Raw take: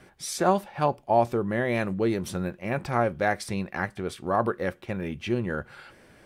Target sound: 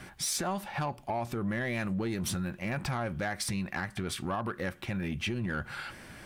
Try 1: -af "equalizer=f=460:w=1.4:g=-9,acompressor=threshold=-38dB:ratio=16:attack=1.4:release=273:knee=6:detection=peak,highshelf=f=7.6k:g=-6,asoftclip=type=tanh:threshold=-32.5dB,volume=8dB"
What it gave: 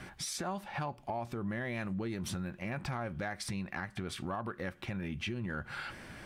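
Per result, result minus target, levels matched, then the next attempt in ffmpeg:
compressor: peak gain reduction +5.5 dB; 8000 Hz band -3.0 dB
-af "equalizer=f=460:w=1.4:g=-9,acompressor=threshold=-32dB:ratio=16:attack=1.4:release=273:knee=6:detection=peak,highshelf=f=7.6k:g=-6,asoftclip=type=tanh:threshold=-32.5dB,volume=8dB"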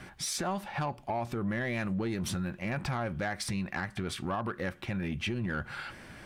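8000 Hz band -2.5 dB
-af "equalizer=f=460:w=1.4:g=-9,acompressor=threshold=-32dB:ratio=16:attack=1.4:release=273:knee=6:detection=peak,highshelf=f=7.6k:g=2,asoftclip=type=tanh:threshold=-32.5dB,volume=8dB"

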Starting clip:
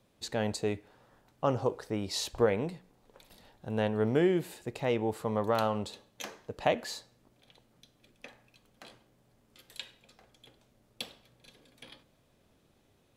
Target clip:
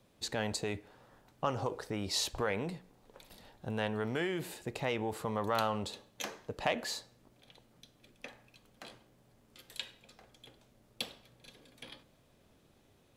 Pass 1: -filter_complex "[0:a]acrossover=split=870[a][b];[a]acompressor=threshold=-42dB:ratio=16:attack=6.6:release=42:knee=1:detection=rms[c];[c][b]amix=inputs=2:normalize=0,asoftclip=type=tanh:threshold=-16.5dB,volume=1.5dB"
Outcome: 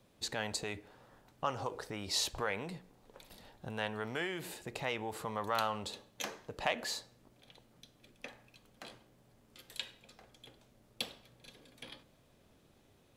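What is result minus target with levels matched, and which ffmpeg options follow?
compressor: peak gain reduction +6.5 dB
-filter_complex "[0:a]acrossover=split=870[a][b];[a]acompressor=threshold=-35dB:ratio=16:attack=6.6:release=42:knee=1:detection=rms[c];[c][b]amix=inputs=2:normalize=0,asoftclip=type=tanh:threshold=-16.5dB,volume=1.5dB"

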